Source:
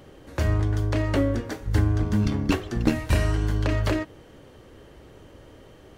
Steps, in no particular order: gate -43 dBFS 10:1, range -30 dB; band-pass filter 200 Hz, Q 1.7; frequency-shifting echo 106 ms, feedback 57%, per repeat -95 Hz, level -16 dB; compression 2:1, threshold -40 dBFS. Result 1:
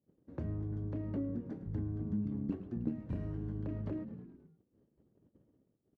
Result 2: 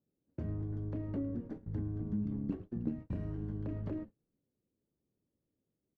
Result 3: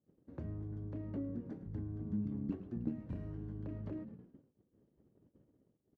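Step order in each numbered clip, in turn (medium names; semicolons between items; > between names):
gate > frequency-shifting echo > band-pass filter > compression; band-pass filter > compression > frequency-shifting echo > gate; frequency-shifting echo > compression > gate > band-pass filter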